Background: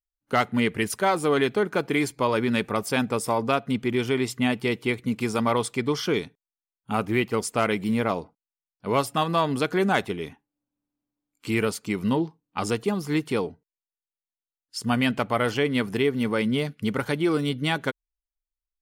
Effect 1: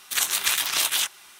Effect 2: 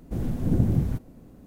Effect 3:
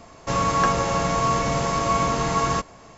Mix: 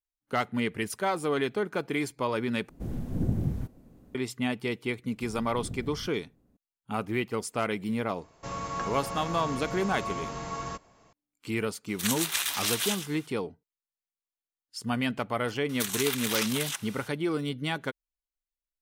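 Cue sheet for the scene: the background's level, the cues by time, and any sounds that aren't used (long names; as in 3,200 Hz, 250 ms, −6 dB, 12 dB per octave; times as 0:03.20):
background −6 dB
0:02.69: overwrite with 2 −6 dB
0:05.11: mix in 2 −17.5 dB
0:08.16: mix in 3 −13.5 dB
0:11.88: mix in 1 −6.5 dB + repeating echo 112 ms, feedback 18%, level −10 dB
0:15.69: mix in 1 −4.5 dB + compressor whose output falls as the input rises −27 dBFS, ratio −0.5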